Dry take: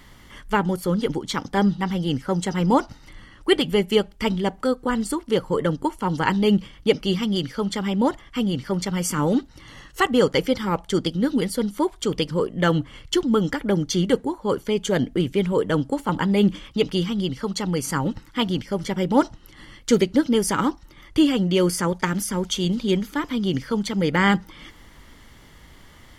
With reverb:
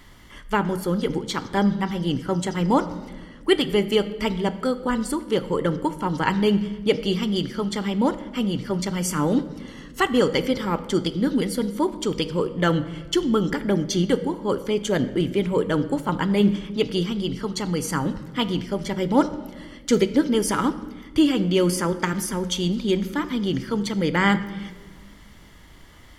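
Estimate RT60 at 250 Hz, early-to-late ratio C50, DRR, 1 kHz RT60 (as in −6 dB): 2.1 s, 14.0 dB, 11.0 dB, 1.2 s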